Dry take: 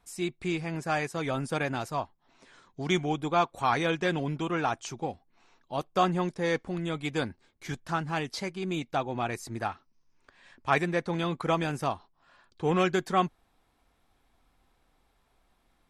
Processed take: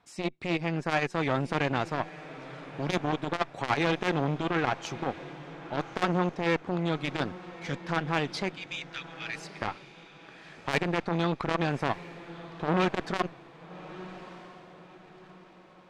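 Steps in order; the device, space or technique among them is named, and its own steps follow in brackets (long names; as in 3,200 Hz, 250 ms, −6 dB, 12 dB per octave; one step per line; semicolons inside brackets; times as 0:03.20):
0:08.55–0:09.62: Butterworth high-pass 1,700 Hz
valve radio (band-pass filter 110–4,400 Hz; tube saturation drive 24 dB, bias 0.75; saturating transformer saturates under 750 Hz)
feedback delay with all-pass diffusion 1,209 ms, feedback 41%, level −15 dB
level +8.5 dB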